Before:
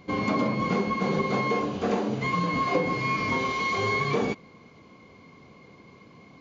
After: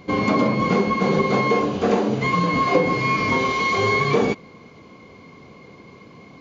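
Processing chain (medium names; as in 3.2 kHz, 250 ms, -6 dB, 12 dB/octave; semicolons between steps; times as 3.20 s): peaking EQ 440 Hz +2 dB; trim +6 dB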